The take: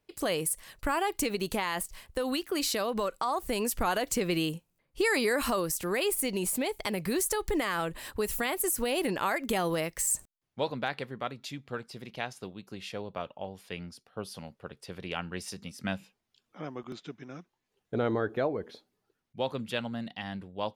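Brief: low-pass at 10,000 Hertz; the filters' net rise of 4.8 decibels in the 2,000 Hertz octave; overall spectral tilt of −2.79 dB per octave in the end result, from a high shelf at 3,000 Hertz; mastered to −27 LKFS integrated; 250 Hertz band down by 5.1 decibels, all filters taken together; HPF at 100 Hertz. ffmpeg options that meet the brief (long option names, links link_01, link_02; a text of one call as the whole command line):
ffmpeg -i in.wav -af "highpass=100,lowpass=10000,equalizer=frequency=250:width_type=o:gain=-7,equalizer=frequency=2000:width_type=o:gain=4,highshelf=frequency=3000:gain=5.5,volume=3dB" out.wav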